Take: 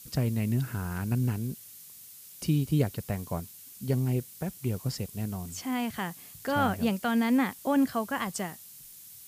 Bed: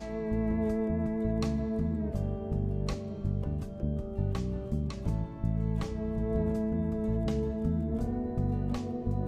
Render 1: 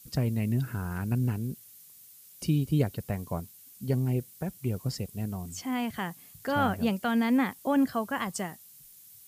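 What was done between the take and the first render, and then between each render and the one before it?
denoiser 6 dB, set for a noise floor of -49 dBFS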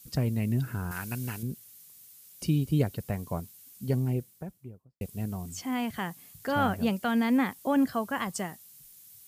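0.91–1.43 tilt shelf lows -8.5 dB, about 860 Hz; 3.9–5.01 studio fade out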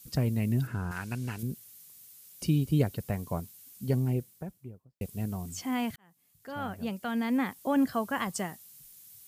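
0.67–1.39 air absorption 51 m; 5.96–8.02 fade in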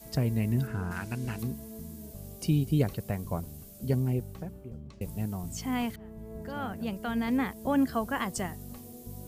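add bed -12.5 dB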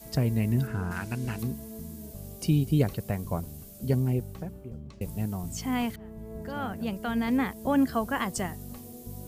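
gain +2 dB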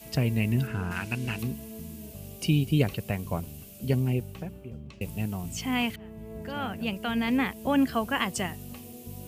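HPF 52 Hz; bell 2700 Hz +11.5 dB 0.63 oct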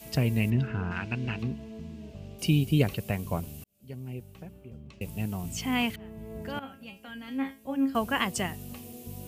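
0.5–2.39 air absorption 160 m; 3.64–5.46 fade in; 6.59–7.95 resonator 270 Hz, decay 0.27 s, mix 90%

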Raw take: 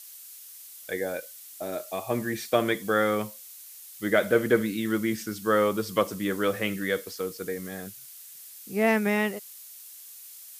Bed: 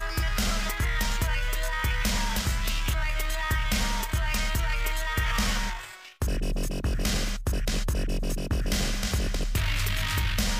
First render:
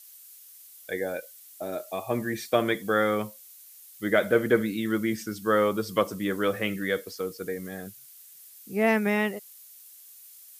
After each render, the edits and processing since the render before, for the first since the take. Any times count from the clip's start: denoiser 6 dB, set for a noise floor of -46 dBFS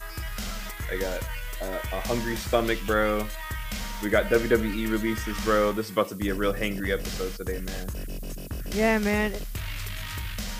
add bed -7 dB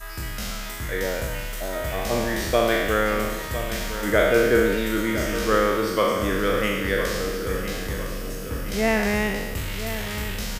spectral trails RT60 1.40 s; feedback echo 1.01 s, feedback 48%, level -11 dB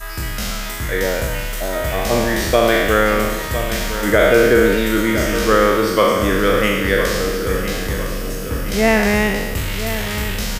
gain +7 dB; limiter -2 dBFS, peak gain reduction 3 dB

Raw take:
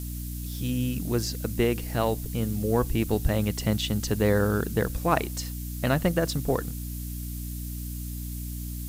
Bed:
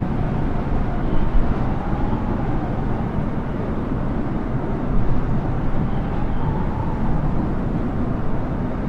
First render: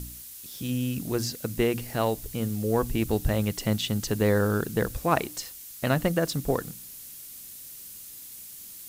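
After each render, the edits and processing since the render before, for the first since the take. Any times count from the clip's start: de-hum 60 Hz, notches 5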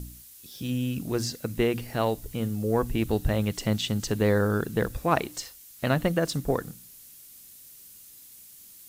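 noise print and reduce 6 dB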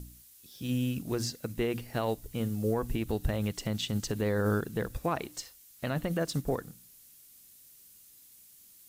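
limiter -18.5 dBFS, peak gain reduction 8.5 dB; upward expander 1.5:1, over -38 dBFS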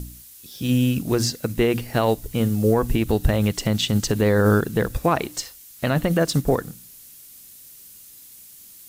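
gain +11 dB

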